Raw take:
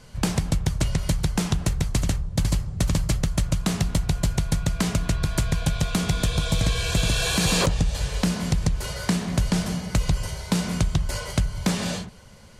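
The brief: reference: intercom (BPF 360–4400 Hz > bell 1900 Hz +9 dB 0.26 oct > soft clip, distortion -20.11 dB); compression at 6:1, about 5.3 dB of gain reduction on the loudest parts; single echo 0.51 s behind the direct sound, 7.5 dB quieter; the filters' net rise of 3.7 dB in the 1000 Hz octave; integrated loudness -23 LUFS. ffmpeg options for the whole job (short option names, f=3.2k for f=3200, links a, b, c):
-af "equalizer=f=1k:t=o:g=4.5,acompressor=threshold=-23dB:ratio=6,highpass=360,lowpass=4.4k,equalizer=f=1.9k:t=o:w=0.26:g=9,aecho=1:1:510:0.422,asoftclip=threshold=-16.5dB,volume=10.5dB"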